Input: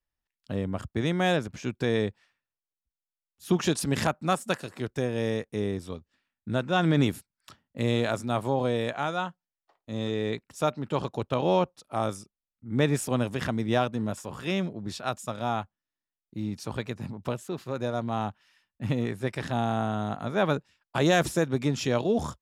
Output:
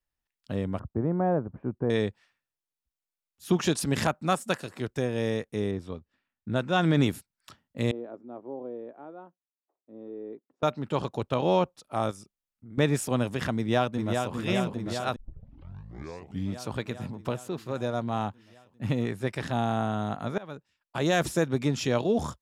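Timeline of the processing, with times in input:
0.79–1.9 LPF 1100 Hz 24 dB/oct
5.71–6.56 LPF 2300 Hz 6 dB/oct
7.91–10.63 ladder band-pass 390 Hz, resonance 40%
12.11–12.78 compressor 4:1, threshold -43 dBFS
13.57–14.34 echo throw 0.4 s, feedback 75%, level -4.5 dB
15.16 tape start 1.41 s
20.38–21.4 fade in, from -24 dB

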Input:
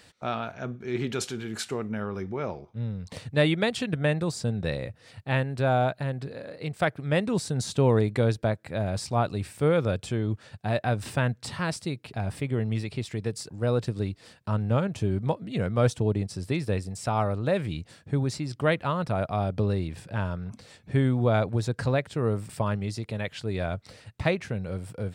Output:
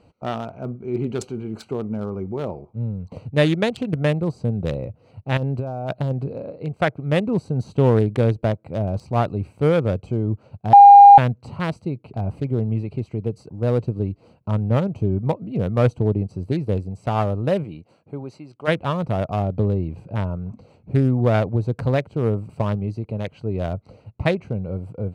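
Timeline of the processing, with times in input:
5.37–6.51 negative-ratio compressor -29 dBFS
10.73–11.18 bleep 807 Hz -8 dBFS
17.63–18.67 HPF 370 Hz -> 1300 Hz 6 dB/oct
whole clip: Wiener smoothing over 25 samples; gain +5.5 dB

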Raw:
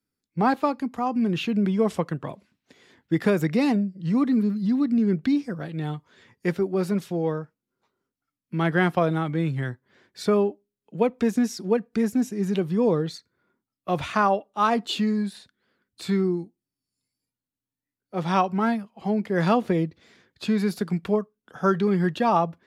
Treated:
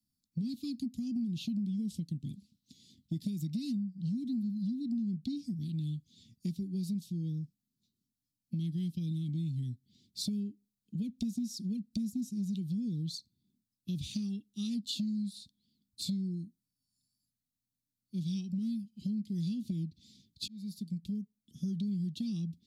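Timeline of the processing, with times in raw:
20.48–21.76 fade in linear
whole clip: elliptic band-stop 230–3900 Hz, stop band 50 dB; compressor, threshold -35 dBFS; gain +2 dB

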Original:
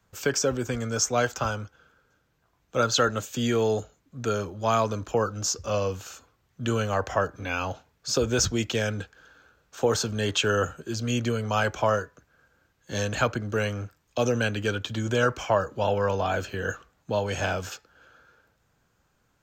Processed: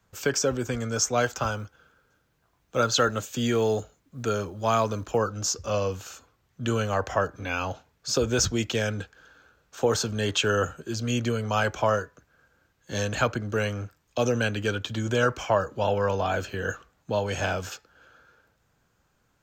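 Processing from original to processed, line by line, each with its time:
1.2–5.17 companded quantiser 8-bit

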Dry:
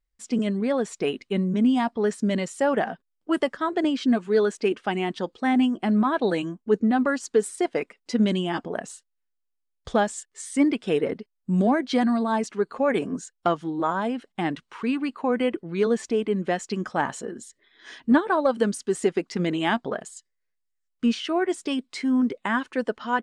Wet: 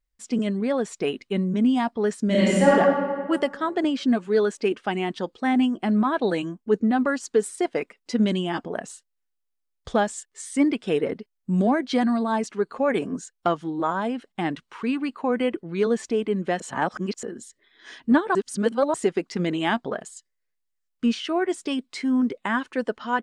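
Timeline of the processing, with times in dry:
2.26–2.74 reverb throw, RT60 1.8 s, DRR -7 dB
16.6–17.23 reverse
18.35–18.94 reverse

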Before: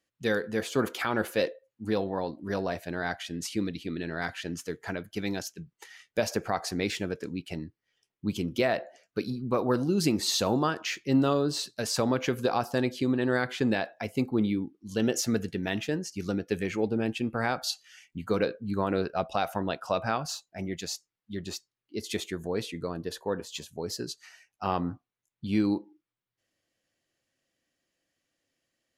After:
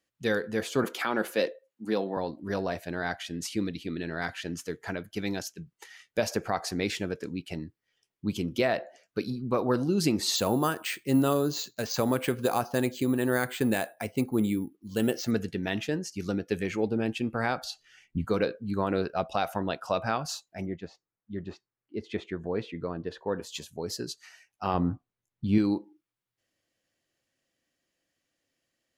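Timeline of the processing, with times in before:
0.84–2.17 HPF 170 Hz 24 dB/oct
10.36–15.31 careless resampling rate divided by 4×, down filtered, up hold
17.64–18.25 tilt -3 dB/oct
20.65–23.33 LPF 1300 Hz -> 3000 Hz
24.74–25.58 tilt -2 dB/oct

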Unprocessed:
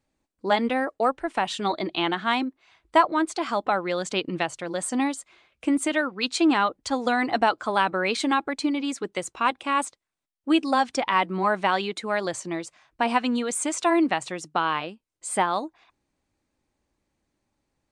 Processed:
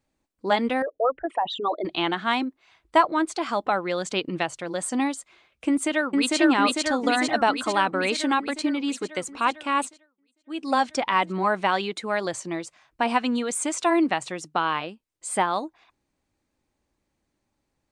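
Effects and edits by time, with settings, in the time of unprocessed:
0.82–1.85 formant sharpening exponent 3
5.68–6.37 echo throw 0.45 s, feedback 70%, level -0.5 dB
9.84–10.73 dip -21 dB, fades 0.31 s quadratic

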